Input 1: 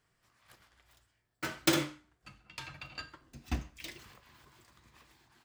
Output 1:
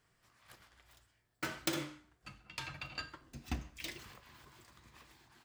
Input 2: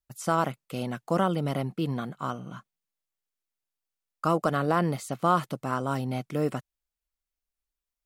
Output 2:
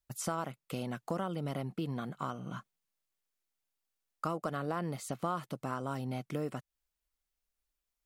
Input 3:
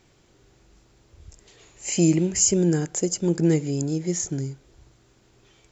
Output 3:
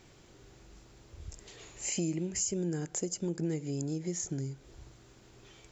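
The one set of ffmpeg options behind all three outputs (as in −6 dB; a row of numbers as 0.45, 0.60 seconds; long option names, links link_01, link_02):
-af "acompressor=threshold=-37dB:ratio=3,volume=1.5dB"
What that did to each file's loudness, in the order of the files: −6.5, −9.5, −11.5 LU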